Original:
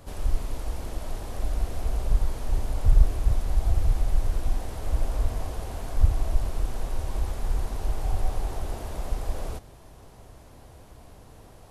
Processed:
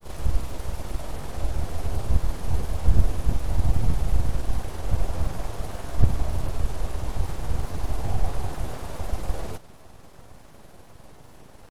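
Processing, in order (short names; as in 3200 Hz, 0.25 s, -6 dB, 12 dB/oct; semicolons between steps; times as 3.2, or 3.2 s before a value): grains, spray 21 ms, pitch spread up and down by 0 st; full-wave rectifier; gain +4 dB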